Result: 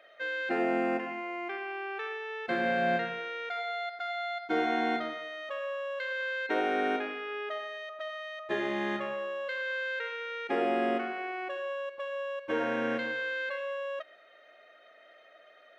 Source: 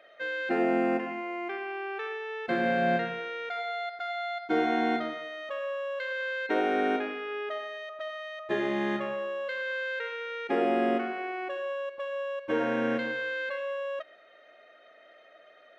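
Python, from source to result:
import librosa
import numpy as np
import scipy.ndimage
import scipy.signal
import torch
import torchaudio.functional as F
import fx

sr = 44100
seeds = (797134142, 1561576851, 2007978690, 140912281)

y = fx.low_shelf(x, sr, hz=470.0, db=-5.5)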